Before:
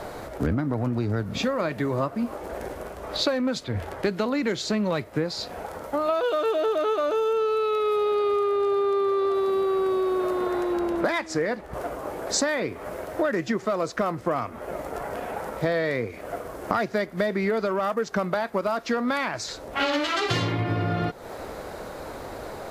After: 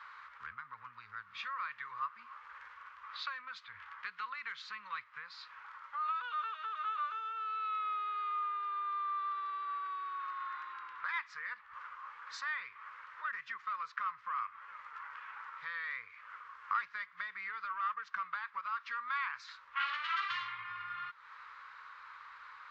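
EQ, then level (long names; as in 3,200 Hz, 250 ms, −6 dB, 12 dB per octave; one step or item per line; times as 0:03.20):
elliptic high-pass filter 1,100 Hz, stop band 40 dB
high-frequency loss of the air 76 metres
head-to-tape spacing loss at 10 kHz 34 dB
0.0 dB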